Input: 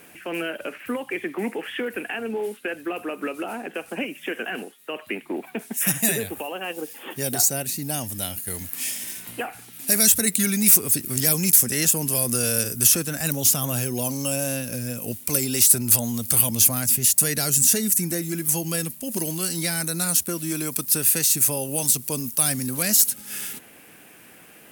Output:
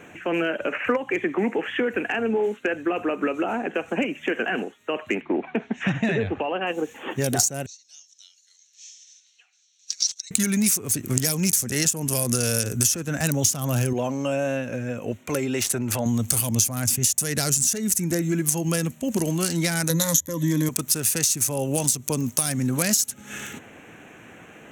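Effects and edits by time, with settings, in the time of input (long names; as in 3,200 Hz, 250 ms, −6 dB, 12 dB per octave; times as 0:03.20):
0:00.72–0:00.97: gain on a spectral selection 450–3,000 Hz +9 dB
0:05.21–0:06.67: low-pass filter 4,200 Hz 24 dB per octave
0:07.66–0:10.31: flat-topped band-pass 5,000 Hz, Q 2.9
0:13.93–0:16.06: bass and treble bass −10 dB, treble −11 dB
0:19.89–0:20.69: EQ curve with evenly spaced ripples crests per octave 1.1, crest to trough 18 dB
whole clip: adaptive Wiener filter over 9 samples; graphic EQ with 15 bands 100 Hz +5 dB, 6,300 Hz +10 dB, 16,000 Hz −9 dB; downward compressor 12 to 1, threshold −24 dBFS; level +6 dB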